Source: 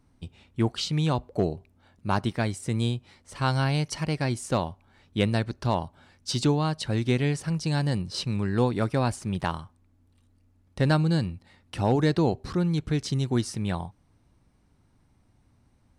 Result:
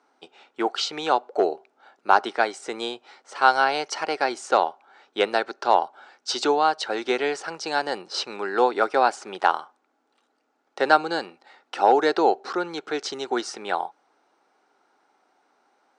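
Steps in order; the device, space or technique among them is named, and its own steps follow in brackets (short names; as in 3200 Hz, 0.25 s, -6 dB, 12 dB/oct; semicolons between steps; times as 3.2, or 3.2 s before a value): phone speaker on a table (speaker cabinet 370–7200 Hz, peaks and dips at 410 Hz +4 dB, 790 Hz +10 dB, 1400 Hz +10 dB); gain +4 dB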